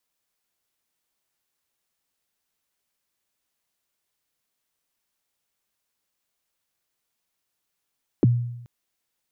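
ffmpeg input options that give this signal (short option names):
-f lavfi -i "aevalsrc='0.266*pow(10,-3*t/0.86)*sin(2*PI*(430*0.022/log(120/430)*(exp(log(120/430)*min(t,0.022)/0.022)-1)+120*max(t-0.022,0)))':d=0.43:s=44100"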